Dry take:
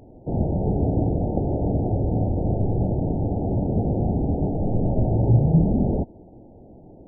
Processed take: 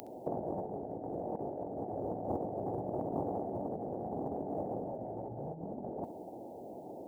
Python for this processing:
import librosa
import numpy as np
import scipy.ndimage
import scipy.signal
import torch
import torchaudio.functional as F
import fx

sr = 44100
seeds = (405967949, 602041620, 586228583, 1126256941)

y = fx.highpass(x, sr, hz=310.0, slope=6)
y = fx.tilt_eq(y, sr, slope=4.0)
y = fx.over_compress(y, sr, threshold_db=-39.0, ratio=-0.5)
y = fx.room_flutter(y, sr, wall_m=11.3, rt60_s=0.25)
y = fx.doppler_dist(y, sr, depth_ms=0.34)
y = F.gain(torch.from_numpy(y), 2.5).numpy()